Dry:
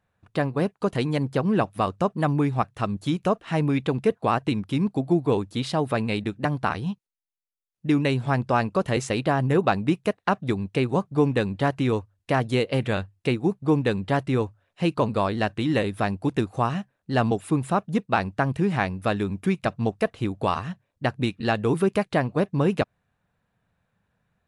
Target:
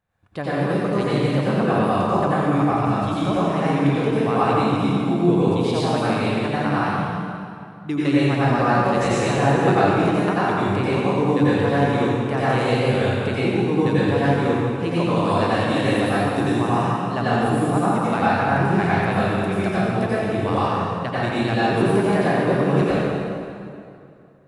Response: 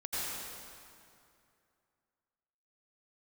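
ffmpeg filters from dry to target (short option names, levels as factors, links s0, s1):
-filter_complex "[0:a]asettb=1/sr,asplit=3[s0][s1][s2];[s0]atrim=end=15.134[s3];[s1]atrim=start=15.13:end=16.68,asetpts=PTS-STARTPTS,afade=t=in:d=0.004:c=qsin,afade=t=out:st=1.546:d=0.004:c=qsin,highshelf=f=6000:g=8[s4];[s2]atrim=start=16.676[s5];[s3][s4]acrossfade=d=0.004:c1=hsin:c2=qsin[s6];[s6][s5]acrossfade=d=0.004:c1=qsin:c2=hsin[s7];[1:a]atrim=start_sample=2205[s8];[s7][s8]afir=irnorm=-1:irlink=0"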